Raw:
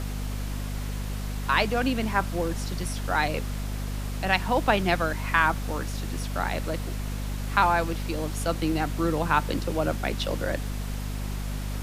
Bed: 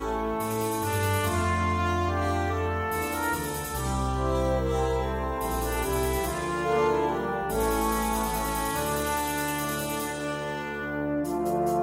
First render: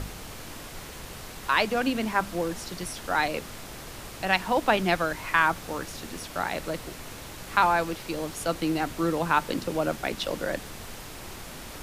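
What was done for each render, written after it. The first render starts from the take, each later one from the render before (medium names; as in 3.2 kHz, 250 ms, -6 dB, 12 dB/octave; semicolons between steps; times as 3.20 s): de-hum 50 Hz, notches 5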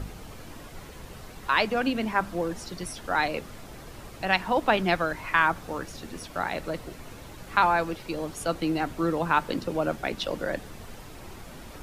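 noise reduction 8 dB, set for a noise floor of -42 dBFS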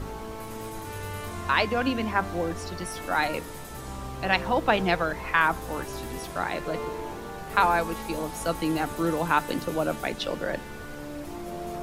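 add bed -10 dB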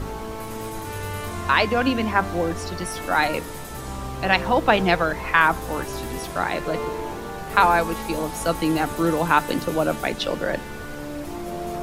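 trim +5 dB; peak limiter -3 dBFS, peak gain reduction 1.5 dB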